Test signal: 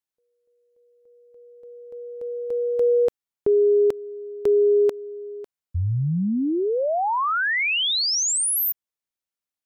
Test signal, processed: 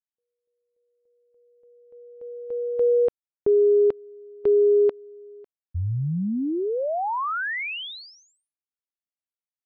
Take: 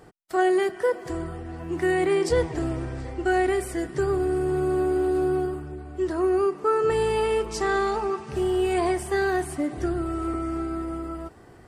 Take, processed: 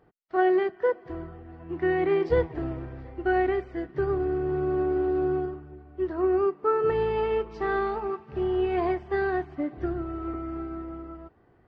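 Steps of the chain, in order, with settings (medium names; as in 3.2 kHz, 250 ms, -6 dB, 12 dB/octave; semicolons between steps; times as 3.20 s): Gaussian low-pass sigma 2.6 samples; upward expansion 1.5:1, over -41 dBFS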